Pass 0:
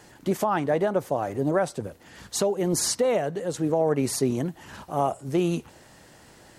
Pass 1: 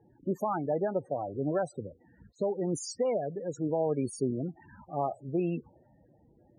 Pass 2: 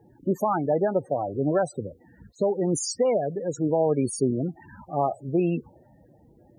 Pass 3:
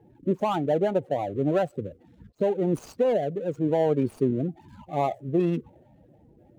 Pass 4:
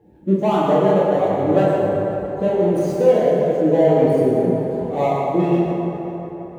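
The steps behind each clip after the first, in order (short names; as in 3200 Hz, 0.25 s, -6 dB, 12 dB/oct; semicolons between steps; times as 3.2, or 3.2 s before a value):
loudest bins only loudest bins 16; low-pass opened by the level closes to 620 Hz, open at -24.5 dBFS; gain -6 dB
high shelf 5500 Hz +5 dB; gain +6.5 dB
median filter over 25 samples
reverb RT60 4.2 s, pre-delay 7 ms, DRR -8.5 dB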